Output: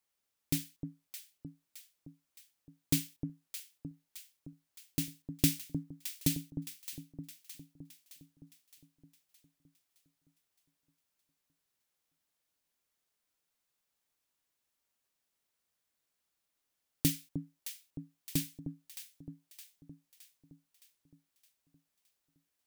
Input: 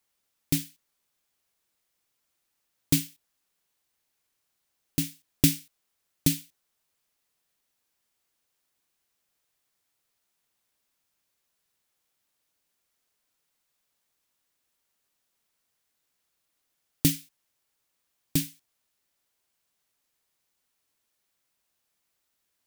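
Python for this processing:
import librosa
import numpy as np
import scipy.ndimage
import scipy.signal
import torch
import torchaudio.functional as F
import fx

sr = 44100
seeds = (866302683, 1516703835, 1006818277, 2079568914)

y = fx.echo_alternate(x, sr, ms=308, hz=840.0, feedback_pct=72, wet_db=-7.5)
y = F.gain(torch.from_numpy(y), -6.5).numpy()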